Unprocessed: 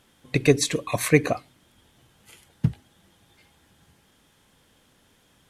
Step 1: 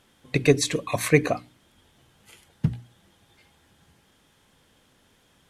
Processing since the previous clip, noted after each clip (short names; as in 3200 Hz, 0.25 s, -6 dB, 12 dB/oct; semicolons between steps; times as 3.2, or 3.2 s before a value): high shelf 9500 Hz -4 dB; notches 60/120/180/240/300 Hz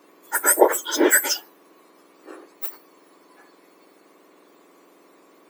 spectrum mirrored in octaves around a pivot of 1900 Hz; gain +8 dB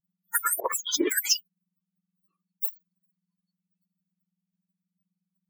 per-bin expansion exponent 3; negative-ratio compressor -23 dBFS, ratio -0.5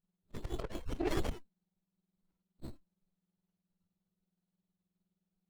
nonlinear frequency compression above 2500 Hz 4:1; auto swell 0.185 s; running maximum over 33 samples; gain -2 dB